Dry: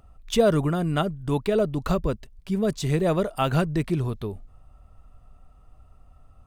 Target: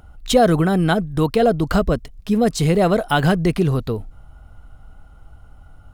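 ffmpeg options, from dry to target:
-filter_complex "[0:a]asetrate=48000,aresample=44100,asplit=2[s0][s1];[s1]alimiter=limit=0.133:level=0:latency=1,volume=0.891[s2];[s0][s2]amix=inputs=2:normalize=0,volume=1.33"

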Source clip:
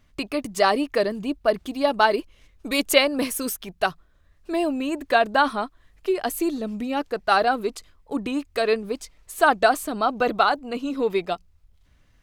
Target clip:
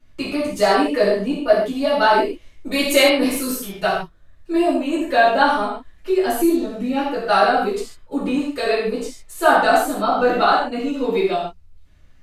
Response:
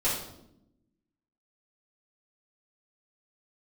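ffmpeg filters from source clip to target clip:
-filter_complex "[1:a]atrim=start_sample=2205,afade=t=out:st=0.16:d=0.01,atrim=end_sample=7497,asetrate=29547,aresample=44100[s0];[0:a][s0]afir=irnorm=-1:irlink=0,volume=0.376"

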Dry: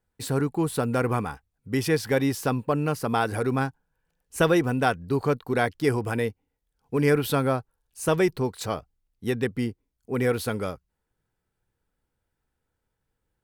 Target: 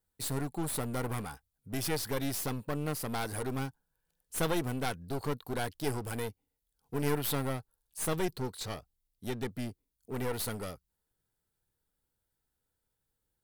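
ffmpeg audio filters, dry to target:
-filter_complex "[0:a]asettb=1/sr,asplit=3[s0][s1][s2];[s0]atrim=end=8.254[s3];[s1]atrim=start=8.25:end=10.39,asetpts=PTS-STARTPTS,afade=t=in:d=0.004:c=qsin,afade=t=out:st=2.136:d=0.004:c=qsin,acrossover=split=7000[s4][s5];[s5]acompressor=threshold=0.00282:ratio=4:attack=1:release=60[s6];[s4][s6]amix=inputs=2:normalize=0[s7];[s2]atrim=start=10.386[s8];[s3][s7]acrossfade=d=0.004:c1=hsin:c2=qsin[s9];[s9][s8]acrossfade=d=0.004:c1=qsin:c2=hsin,aexciter=amount=2.6:drive=3.9:freq=3400,aeval=exprs='clip(val(0),-1,0.0251)':c=same,volume=0.447"

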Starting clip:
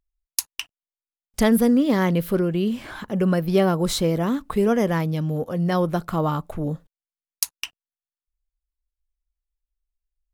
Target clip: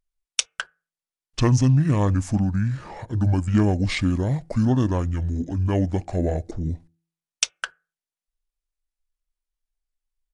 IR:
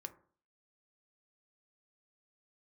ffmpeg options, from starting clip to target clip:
-filter_complex "[0:a]bandreject=f=303.3:t=h:w=4,bandreject=f=606.6:t=h:w=4,asetrate=24046,aresample=44100,atempo=1.83401,asplit=2[s0][s1];[1:a]atrim=start_sample=2205,asetrate=61740,aresample=44100[s2];[s1][s2]afir=irnorm=-1:irlink=0,volume=0.473[s3];[s0][s3]amix=inputs=2:normalize=0,volume=0.841"

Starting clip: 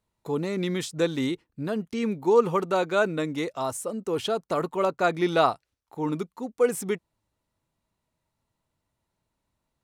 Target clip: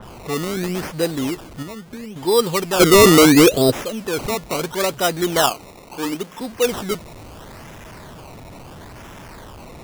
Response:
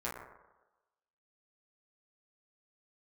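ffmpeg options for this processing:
-filter_complex "[0:a]aeval=exprs='val(0)+0.5*0.0188*sgn(val(0))':c=same,asettb=1/sr,asplit=3[s0][s1][s2];[s0]atrim=end=1.624[s3];[s1]atrim=start=1.62:end=2.16,asetpts=PTS-STARTPTS,afade=t=in:d=0.004:c=qsin,afade=t=out:st=0.536:d=0.004:c=qsin,acompressor=threshold=0.02:ratio=6[s4];[s2]atrim=start=2.156[s5];[s3][s4]acrossfade=d=0.004:c1=hsin:c2=qsin[s6];[s6][s5]acrossfade=d=0.004:c1=qsin:c2=hsin,asplit=3[s7][s8][s9];[s7]afade=t=out:st=2.79:d=0.02[s10];[s8]lowshelf=f=640:t=q:w=3:g=13.5,afade=t=in:st=2.79:d=0.02,afade=t=out:st=3.7:d=0.02[s11];[s9]afade=t=in:st=3.7:d=0.02[s12];[s10][s11][s12]amix=inputs=3:normalize=0,asettb=1/sr,asplit=3[s13][s14][s15];[s13]atrim=end=5.494[s16];[s14]atrim=start=5.49:end=6.41,asetpts=PTS-STARTPTS,afade=t=in:d=0.004:c=qsin,afade=t=out:st=0.916:d=0.004:c=qsin,highpass=f=200:w=0.5412,highpass=f=200:w=1.3066[s17];[s15]atrim=start=6.406[s18];[s16][s17]acrossfade=d=0.004:c1=hsin:c2=qsin[s19];[s19][s18]acrossfade=d=0.004:c1=qsin:c2=hsin,acrusher=samples=19:mix=1:aa=0.000001:lfo=1:lforange=19:lforate=0.74,asoftclip=type=hard:threshold=0.335,adynamicequalizer=threshold=0.0178:dfrequency=3300:dqfactor=0.7:tfrequency=3300:tqfactor=0.7:attack=5:release=100:ratio=0.375:range=2:mode=boostabove:tftype=highshelf,volume=1.33"

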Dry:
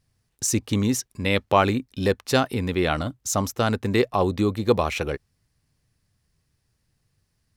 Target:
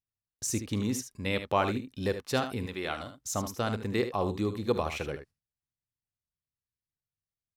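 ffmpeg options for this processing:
-filter_complex "[0:a]agate=range=0.0891:threshold=0.00447:ratio=16:detection=peak,asettb=1/sr,asplit=3[s0][s1][s2];[s0]atrim=end=2.664[s3];[s1]atrim=start=2.66:end=3.18,asetpts=PTS-STARTPTS,afade=t=in:d=0.004:c=qsin,afade=t=out:st=0.516:d=0.004:c=qsin,lowshelf=f=370:g=-10.5[s4];[s2]atrim=start=3.176[s5];[s3][s4]acrossfade=d=0.004:c1=hsin:c2=qsin[s6];[s6][s5]acrossfade=d=0.004:c1=qsin:c2=hsin,aecho=1:1:48|75:0.141|0.316,volume=0.376"

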